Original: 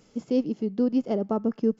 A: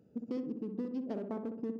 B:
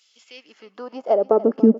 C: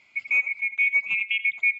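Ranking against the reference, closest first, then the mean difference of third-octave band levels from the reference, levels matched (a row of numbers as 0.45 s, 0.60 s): A, B, C; 4.5 dB, 6.5 dB, 14.5 dB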